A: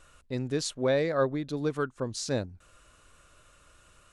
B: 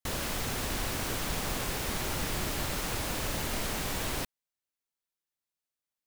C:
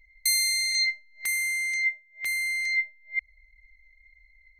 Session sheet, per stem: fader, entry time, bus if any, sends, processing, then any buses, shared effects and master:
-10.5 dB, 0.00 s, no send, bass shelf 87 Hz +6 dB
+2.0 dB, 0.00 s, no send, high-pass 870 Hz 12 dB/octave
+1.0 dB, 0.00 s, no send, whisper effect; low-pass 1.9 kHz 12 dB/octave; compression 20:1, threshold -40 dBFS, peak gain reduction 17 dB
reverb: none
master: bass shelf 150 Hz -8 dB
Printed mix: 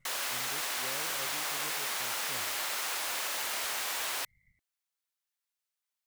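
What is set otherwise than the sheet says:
stem A -10.5 dB -> -22.0 dB; stem C +1.0 dB -> -10.0 dB; master: missing bass shelf 150 Hz -8 dB

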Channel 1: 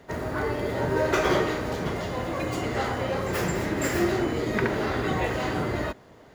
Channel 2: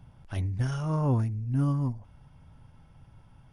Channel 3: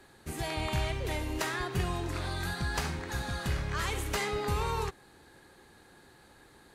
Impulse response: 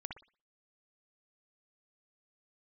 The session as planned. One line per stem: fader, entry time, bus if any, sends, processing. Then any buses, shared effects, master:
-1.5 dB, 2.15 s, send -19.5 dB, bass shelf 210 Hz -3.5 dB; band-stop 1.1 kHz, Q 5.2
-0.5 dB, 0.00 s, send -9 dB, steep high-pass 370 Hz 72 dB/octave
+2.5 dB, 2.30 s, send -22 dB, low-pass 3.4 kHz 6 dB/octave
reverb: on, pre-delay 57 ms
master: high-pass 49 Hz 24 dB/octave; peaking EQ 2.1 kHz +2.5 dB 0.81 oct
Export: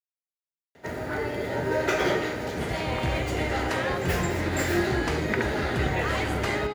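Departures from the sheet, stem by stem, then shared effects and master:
stem 1: entry 2.15 s -> 0.75 s; stem 2: muted

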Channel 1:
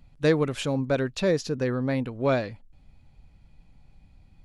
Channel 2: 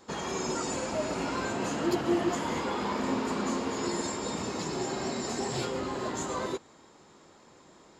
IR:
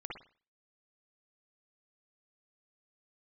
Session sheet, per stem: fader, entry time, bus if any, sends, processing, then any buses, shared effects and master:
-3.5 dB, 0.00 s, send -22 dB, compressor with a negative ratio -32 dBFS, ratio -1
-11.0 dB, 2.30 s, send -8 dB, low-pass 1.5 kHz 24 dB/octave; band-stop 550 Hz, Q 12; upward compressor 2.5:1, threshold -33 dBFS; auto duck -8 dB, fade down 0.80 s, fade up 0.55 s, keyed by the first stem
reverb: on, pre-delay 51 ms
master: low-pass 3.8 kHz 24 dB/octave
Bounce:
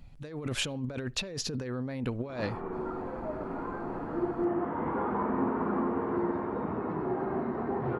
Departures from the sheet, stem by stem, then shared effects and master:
stem 2 -11.0 dB -> -0.5 dB; master: missing low-pass 3.8 kHz 24 dB/octave

